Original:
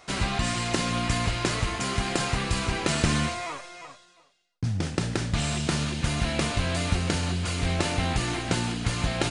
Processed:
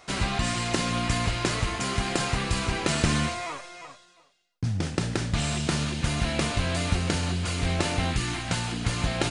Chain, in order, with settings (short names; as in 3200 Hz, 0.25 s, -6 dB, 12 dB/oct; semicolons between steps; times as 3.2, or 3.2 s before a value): 8.1–8.71 bell 790 Hz -> 250 Hz -11.5 dB 0.83 oct